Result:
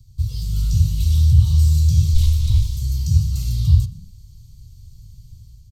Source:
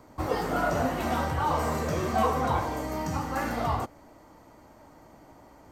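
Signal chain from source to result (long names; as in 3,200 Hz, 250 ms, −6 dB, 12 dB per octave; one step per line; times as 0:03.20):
0:02.14–0:02.81: lower of the sound and its delayed copy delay 3.1 ms
elliptic band-stop filter 120–3,900 Hz, stop band 40 dB
low-shelf EQ 120 Hz +3.5 dB
automatic gain control gain up to 6 dB
spectral tilt −1.5 dB per octave
echo with shifted repeats 120 ms, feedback 36%, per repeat +40 Hz, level −23 dB
on a send at −13 dB: convolution reverb RT60 0.30 s, pre-delay 30 ms
on the sum: level +7 dB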